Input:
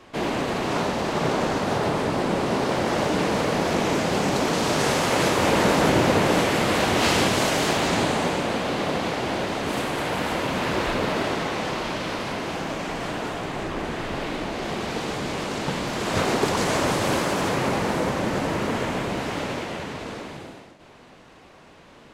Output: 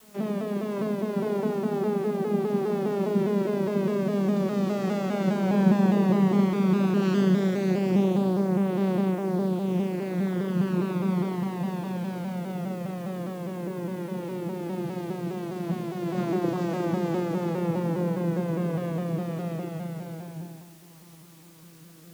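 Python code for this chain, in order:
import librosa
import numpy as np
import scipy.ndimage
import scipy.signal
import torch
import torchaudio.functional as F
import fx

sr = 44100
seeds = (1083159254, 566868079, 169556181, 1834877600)

y = fx.vocoder_glide(x, sr, note=56, semitones=-4)
y = fx.peak_eq(y, sr, hz=230.0, db=8.0, octaves=2.0)
y = fx.doubler(y, sr, ms=37.0, db=-4.0)
y = fx.quant_dither(y, sr, seeds[0], bits=8, dither='triangular')
y = fx.vibrato_shape(y, sr, shape='saw_down', rate_hz=4.9, depth_cents=100.0)
y = F.gain(torch.from_numpy(y), -8.0).numpy()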